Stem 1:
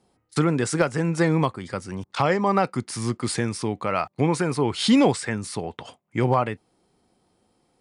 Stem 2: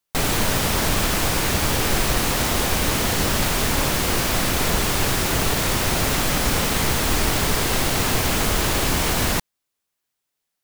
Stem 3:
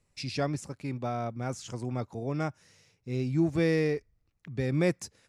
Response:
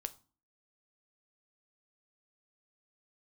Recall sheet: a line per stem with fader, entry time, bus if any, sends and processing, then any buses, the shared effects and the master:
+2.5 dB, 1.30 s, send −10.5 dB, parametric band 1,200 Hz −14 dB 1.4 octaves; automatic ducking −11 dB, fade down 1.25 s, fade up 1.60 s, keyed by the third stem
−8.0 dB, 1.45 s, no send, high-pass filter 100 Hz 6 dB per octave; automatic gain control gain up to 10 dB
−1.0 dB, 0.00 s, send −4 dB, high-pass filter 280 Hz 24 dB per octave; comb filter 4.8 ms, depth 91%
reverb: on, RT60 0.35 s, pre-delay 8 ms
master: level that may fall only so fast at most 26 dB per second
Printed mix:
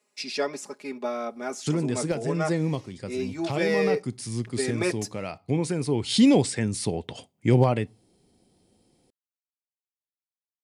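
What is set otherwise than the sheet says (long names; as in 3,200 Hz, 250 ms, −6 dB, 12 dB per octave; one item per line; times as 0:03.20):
stem 2: muted
master: missing level that may fall only so fast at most 26 dB per second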